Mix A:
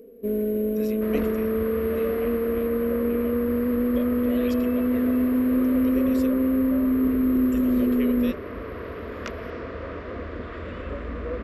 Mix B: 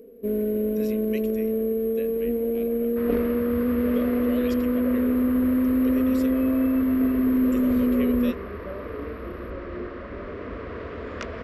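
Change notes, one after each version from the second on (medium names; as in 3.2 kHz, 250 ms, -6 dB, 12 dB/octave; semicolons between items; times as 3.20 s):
second sound: entry +1.95 s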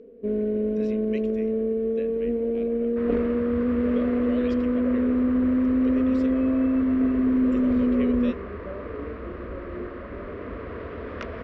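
first sound: add treble shelf 8.9 kHz -7 dB; master: add distance through air 160 m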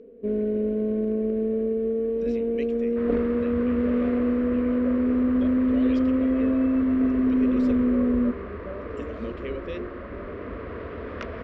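speech: entry +1.45 s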